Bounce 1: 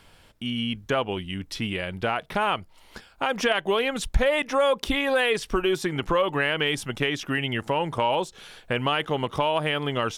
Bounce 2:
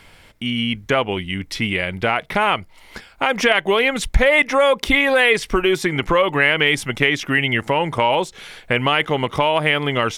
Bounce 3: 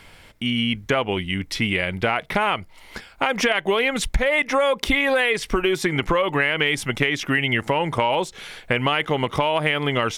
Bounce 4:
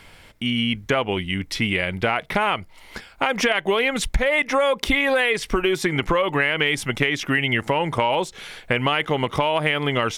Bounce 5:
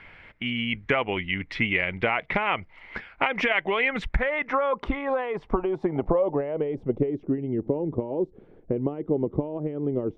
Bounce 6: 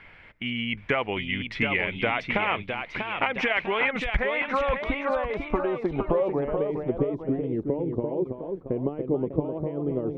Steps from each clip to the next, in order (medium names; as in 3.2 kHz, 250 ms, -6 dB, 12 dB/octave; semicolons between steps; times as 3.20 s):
peaking EQ 2.1 kHz +9 dB 0.3 oct; trim +6 dB
compression, threshold -16 dBFS, peak gain reduction 8.5 dB
no audible change
dynamic bell 1.6 kHz, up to -6 dB, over -37 dBFS, Q 1.7; low-pass sweep 2.1 kHz -> 360 Hz, 3.78–7.41 s; harmonic-percussive split harmonic -5 dB; trim -2 dB
ever faster or slower copies 774 ms, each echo +1 st, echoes 2, each echo -6 dB; trim -1.5 dB